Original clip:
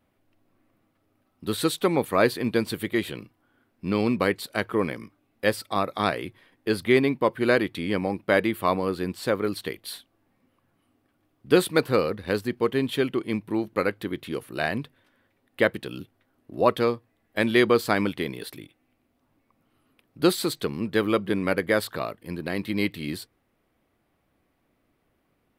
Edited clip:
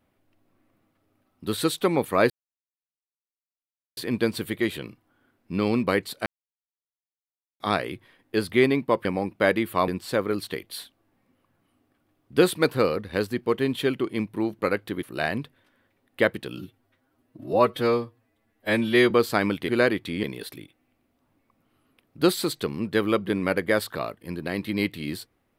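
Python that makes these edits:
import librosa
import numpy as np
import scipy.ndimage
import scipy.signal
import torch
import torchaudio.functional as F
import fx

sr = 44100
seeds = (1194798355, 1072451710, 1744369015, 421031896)

y = fx.edit(x, sr, fx.insert_silence(at_s=2.3, length_s=1.67),
    fx.silence(start_s=4.59, length_s=1.34),
    fx.move(start_s=7.38, length_s=0.55, to_s=18.24),
    fx.cut(start_s=8.76, length_s=0.26),
    fx.cut(start_s=14.17, length_s=0.26),
    fx.stretch_span(start_s=15.97, length_s=1.69, factor=1.5), tone=tone)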